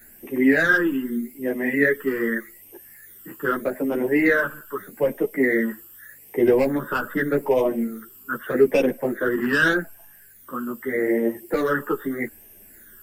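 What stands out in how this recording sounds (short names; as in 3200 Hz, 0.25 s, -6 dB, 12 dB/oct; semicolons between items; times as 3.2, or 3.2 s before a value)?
phasing stages 12, 0.82 Hz, lowest notch 660–1400 Hz; a quantiser's noise floor 12-bit, dither none; a shimmering, thickened sound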